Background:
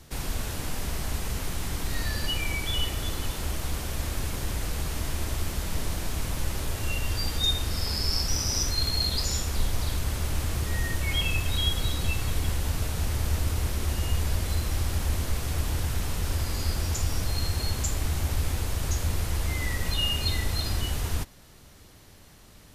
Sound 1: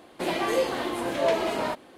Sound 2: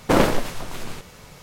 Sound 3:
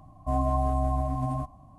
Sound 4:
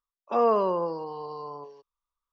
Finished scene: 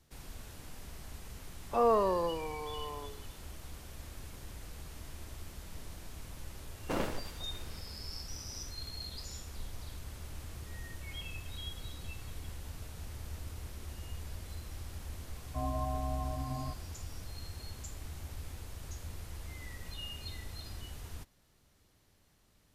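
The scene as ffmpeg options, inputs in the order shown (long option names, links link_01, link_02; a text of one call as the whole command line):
ffmpeg -i bed.wav -i cue0.wav -i cue1.wav -i cue2.wav -i cue3.wav -filter_complex "[0:a]volume=-16.5dB[link_01];[4:a]atrim=end=2.32,asetpts=PTS-STARTPTS,volume=-4.5dB,afade=type=in:duration=0.004:curve=hsin,afade=type=out:start_time=2.316:duration=0.004:curve=hsin,adelay=1420[link_02];[2:a]atrim=end=1.42,asetpts=PTS-STARTPTS,volume=-17.5dB,afade=type=in:duration=0.004:curve=hsin,afade=type=out:start_time=1.416:duration=0.004:curve=hsin,adelay=6800[link_03];[3:a]atrim=end=1.78,asetpts=PTS-STARTPTS,volume=-9.5dB,afade=type=in:duration=0.004:curve=hsin,afade=type=out:start_time=1.776:duration=0.004:curve=hsin,adelay=15280[link_04];[link_01][link_02][link_03][link_04]amix=inputs=4:normalize=0" out.wav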